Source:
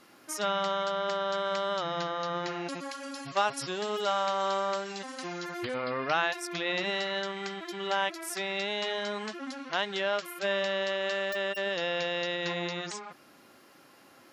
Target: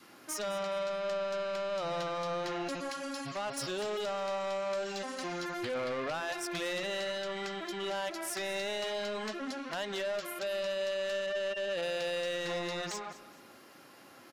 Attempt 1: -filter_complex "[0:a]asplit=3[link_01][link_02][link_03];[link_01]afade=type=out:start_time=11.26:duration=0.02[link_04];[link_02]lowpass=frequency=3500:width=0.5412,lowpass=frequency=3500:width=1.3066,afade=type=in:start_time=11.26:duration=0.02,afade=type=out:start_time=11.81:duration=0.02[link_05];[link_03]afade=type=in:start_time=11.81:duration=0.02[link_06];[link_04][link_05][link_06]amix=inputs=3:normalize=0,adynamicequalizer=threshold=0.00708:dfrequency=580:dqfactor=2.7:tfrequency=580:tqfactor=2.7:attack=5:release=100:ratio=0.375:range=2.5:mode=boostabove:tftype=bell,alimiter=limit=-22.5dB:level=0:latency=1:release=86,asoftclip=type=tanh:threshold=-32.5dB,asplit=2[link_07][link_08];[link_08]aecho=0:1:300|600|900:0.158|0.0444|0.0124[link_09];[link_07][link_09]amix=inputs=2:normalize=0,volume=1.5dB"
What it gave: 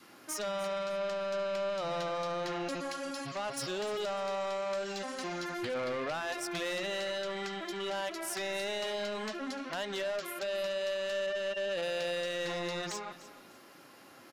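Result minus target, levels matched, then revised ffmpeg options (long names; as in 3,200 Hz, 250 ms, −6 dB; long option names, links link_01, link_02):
echo 89 ms late
-filter_complex "[0:a]asplit=3[link_01][link_02][link_03];[link_01]afade=type=out:start_time=11.26:duration=0.02[link_04];[link_02]lowpass=frequency=3500:width=0.5412,lowpass=frequency=3500:width=1.3066,afade=type=in:start_time=11.26:duration=0.02,afade=type=out:start_time=11.81:duration=0.02[link_05];[link_03]afade=type=in:start_time=11.81:duration=0.02[link_06];[link_04][link_05][link_06]amix=inputs=3:normalize=0,adynamicequalizer=threshold=0.00708:dfrequency=580:dqfactor=2.7:tfrequency=580:tqfactor=2.7:attack=5:release=100:ratio=0.375:range=2.5:mode=boostabove:tftype=bell,alimiter=limit=-22.5dB:level=0:latency=1:release=86,asoftclip=type=tanh:threshold=-32.5dB,asplit=2[link_07][link_08];[link_08]aecho=0:1:211|422|633:0.158|0.0444|0.0124[link_09];[link_07][link_09]amix=inputs=2:normalize=0,volume=1.5dB"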